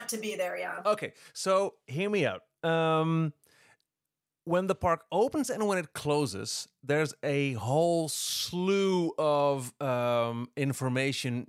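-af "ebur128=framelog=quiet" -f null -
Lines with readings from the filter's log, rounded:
Integrated loudness:
  I:         -29.7 LUFS
  Threshold: -39.9 LUFS
Loudness range:
  LRA:         2.5 LU
  Threshold: -49.9 LUFS
  LRA low:   -31.1 LUFS
  LRA high:  -28.6 LUFS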